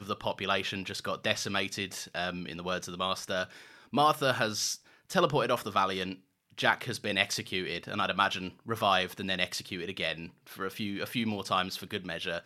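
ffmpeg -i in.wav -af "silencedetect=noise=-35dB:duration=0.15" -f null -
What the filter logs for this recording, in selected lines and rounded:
silence_start: 3.44
silence_end: 3.93 | silence_duration: 0.49
silence_start: 4.75
silence_end: 5.10 | silence_duration: 0.36
silence_start: 6.13
silence_end: 6.58 | silence_duration: 0.45
silence_start: 8.49
silence_end: 8.69 | silence_duration: 0.20
silence_start: 10.26
silence_end: 10.59 | silence_duration: 0.33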